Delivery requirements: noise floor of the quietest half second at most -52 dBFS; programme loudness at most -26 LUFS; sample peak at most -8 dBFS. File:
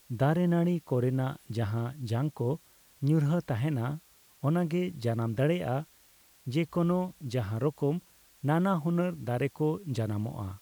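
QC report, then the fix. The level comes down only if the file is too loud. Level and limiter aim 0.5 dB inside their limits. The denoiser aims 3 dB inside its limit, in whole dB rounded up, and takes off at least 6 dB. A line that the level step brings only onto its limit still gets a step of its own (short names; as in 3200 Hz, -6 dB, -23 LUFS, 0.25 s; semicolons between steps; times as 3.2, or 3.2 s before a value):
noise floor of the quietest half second -61 dBFS: OK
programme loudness -30.5 LUFS: OK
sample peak -15.5 dBFS: OK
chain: none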